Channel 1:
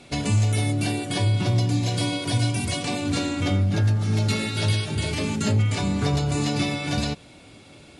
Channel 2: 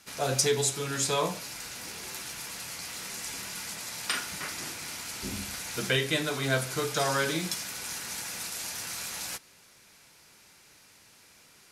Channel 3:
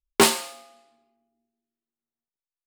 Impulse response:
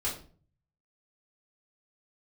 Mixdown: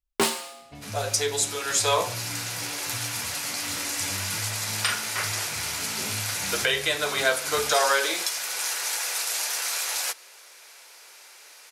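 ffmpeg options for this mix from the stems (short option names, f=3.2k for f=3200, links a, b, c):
-filter_complex "[0:a]lowpass=2.9k,adelay=600,volume=-17dB[a];[1:a]highpass=f=450:w=0.5412,highpass=f=450:w=1.3066,dynaudnorm=f=330:g=5:m=7.5dB,adelay=750,volume=1dB[b];[2:a]volume=0.5dB[c];[a][b][c]amix=inputs=3:normalize=0,alimiter=limit=-10.5dB:level=0:latency=1:release=354"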